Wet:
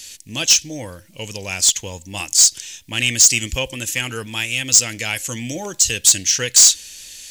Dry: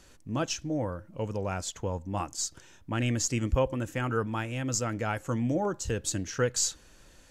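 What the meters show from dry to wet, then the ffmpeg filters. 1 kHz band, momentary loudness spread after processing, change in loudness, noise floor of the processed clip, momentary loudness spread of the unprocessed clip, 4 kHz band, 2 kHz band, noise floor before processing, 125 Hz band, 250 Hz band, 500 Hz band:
-0.5 dB, 19 LU, +16.0 dB, -47 dBFS, 8 LU, +20.5 dB, +14.0 dB, -57 dBFS, 0.0 dB, 0.0 dB, 0.0 dB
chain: -af "aexciter=amount=13.7:drive=4.5:freq=2000,asoftclip=type=tanh:threshold=0.531"

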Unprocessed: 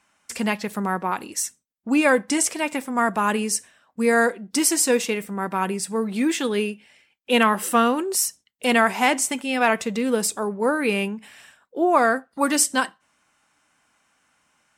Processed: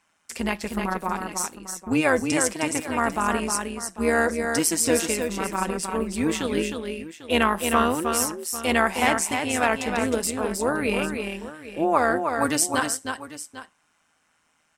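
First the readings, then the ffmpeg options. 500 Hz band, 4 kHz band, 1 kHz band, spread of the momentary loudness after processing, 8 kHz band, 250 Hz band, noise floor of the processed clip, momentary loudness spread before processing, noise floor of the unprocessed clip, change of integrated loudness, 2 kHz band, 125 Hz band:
-1.5 dB, -2.0 dB, -2.0 dB, 11 LU, -2.0 dB, -2.0 dB, -68 dBFS, 9 LU, -69 dBFS, -2.0 dB, -2.0 dB, no reading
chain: -af "aecho=1:1:311|797:0.531|0.178,tremolo=f=160:d=0.667"

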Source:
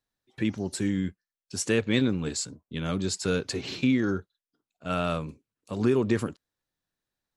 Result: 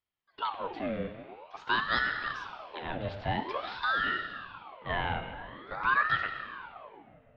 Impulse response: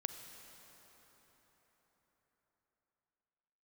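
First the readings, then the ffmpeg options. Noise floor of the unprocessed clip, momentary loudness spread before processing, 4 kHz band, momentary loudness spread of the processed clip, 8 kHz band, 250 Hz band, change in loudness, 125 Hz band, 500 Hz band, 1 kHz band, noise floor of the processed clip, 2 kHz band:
under -85 dBFS, 10 LU, -2.0 dB, 17 LU, under -30 dB, -15.5 dB, -3.5 dB, -10.5 dB, -9.5 dB, +8.0 dB, -67 dBFS, +6.5 dB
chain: -filter_complex "[0:a]highpass=f=280:t=q:w=0.5412,highpass=f=280:t=q:w=1.307,lowpass=f=3200:t=q:w=0.5176,lowpass=f=3200:t=q:w=0.7071,lowpass=f=3200:t=q:w=1.932,afreqshift=-130[s0];[1:a]atrim=start_sample=2205,asetrate=83790,aresample=44100[s1];[s0][s1]afir=irnorm=-1:irlink=0,aeval=exprs='val(0)*sin(2*PI*980*n/s+980*0.65/0.48*sin(2*PI*0.48*n/s))':c=same,volume=2.51"

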